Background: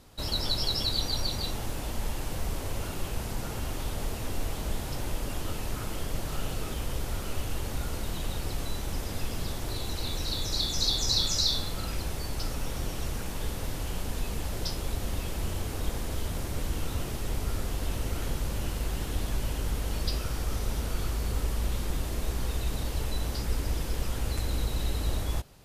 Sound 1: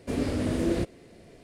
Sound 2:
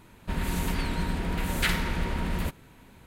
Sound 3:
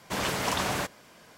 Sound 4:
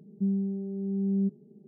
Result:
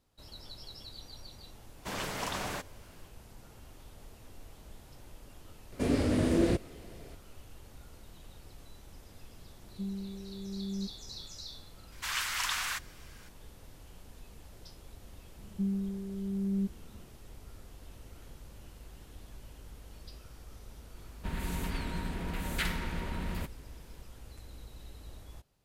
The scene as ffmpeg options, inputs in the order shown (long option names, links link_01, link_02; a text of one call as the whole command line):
ffmpeg -i bed.wav -i cue0.wav -i cue1.wav -i cue2.wav -i cue3.wav -filter_complex "[3:a]asplit=2[link_01][link_02];[4:a]asplit=2[link_03][link_04];[0:a]volume=-19dB[link_05];[1:a]acontrast=85[link_06];[link_02]highpass=frequency=1200:width=0.5412,highpass=frequency=1200:width=1.3066[link_07];[link_04]lowshelf=frequency=190:gain=8.5[link_08];[link_01]atrim=end=1.37,asetpts=PTS-STARTPTS,volume=-7.5dB,afade=type=in:duration=0.1,afade=type=out:start_time=1.27:duration=0.1,adelay=1750[link_09];[link_06]atrim=end=1.43,asetpts=PTS-STARTPTS,volume=-7dB,afade=type=in:duration=0.004:curve=hsin,afade=type=out:start_time=1.426:duration=0.004:curve=hsin,adelay=5720[link_10];[link_03]atrim=end=1.67,asetpts=PTS-STARTPTS,volume=-10dB,afade=type=in:duration=0.004:curve=hsin,afade=type=out:start_time=1.666:duration=0.004:curve=hsin,adelay=9580[link_11];[link_07]atrim=end=1.37,asetpts=PTS-STARTPTS,volume=-1dB,afade=type=in:duration=0.004:curve=hsin,afade=type=out:start_time=1.366:duration=0.004:curve=hsin,adelay=11920[link_12];[link_08]atrim=end=1.67,asetpts=PTS-STARTPTS,volume=-8.5dB,afade=type=in:duration=0.004:curve=hsin,afade=type=out:start_time=1.666:duration=0.004:curve=hsin,adelay=15380[link_13];[2:a]atrim=end=3.06,asetpts=PTS-STARTPTS,volume=-7dB,afade=type=in:duration=0.004:curve=hsin,afade=type=out:start_time=3.056:duration=0.004:curve=hsin,adelay=20960[link_14];[link_05][link_09][link_10][link_11][link_12][link_13][link_14]amix=inputs=7:normalize=0" out.wav